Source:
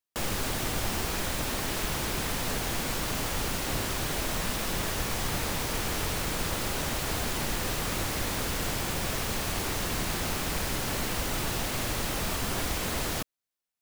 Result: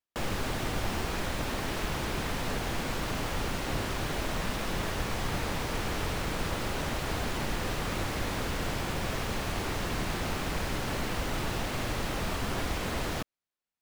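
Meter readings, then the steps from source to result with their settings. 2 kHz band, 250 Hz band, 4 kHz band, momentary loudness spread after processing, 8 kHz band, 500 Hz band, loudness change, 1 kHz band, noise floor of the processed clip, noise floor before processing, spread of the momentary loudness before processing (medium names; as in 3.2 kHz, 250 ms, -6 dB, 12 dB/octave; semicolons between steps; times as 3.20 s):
-1.5 dB, 0.0 dB, -4.0 dB, 0 LU, -8.0 dB, 0.0 dB, -3.0 dB, -0.5 dB, under -85 dBFS, under -85 dBFS, 0 LU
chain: treble shelf 5.4 kHz -12 dB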